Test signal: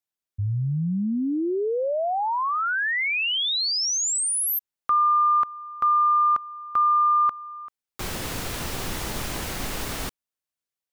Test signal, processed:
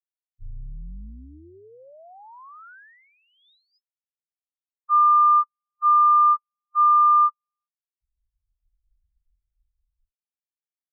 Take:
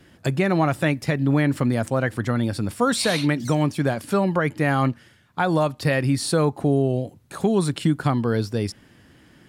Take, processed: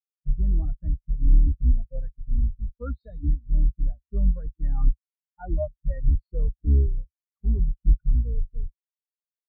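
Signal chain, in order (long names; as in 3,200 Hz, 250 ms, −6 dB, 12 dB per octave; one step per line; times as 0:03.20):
sub-octave generator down 2 octaves, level +4 dB
in parallel at −6 dB: wrap-around overflow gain 11 dB
on the sum: Chebyshev low-pass with heavy ripple 5,100 Hz, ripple 3 dB
every bin expanded away from the loudest bin 4 to 1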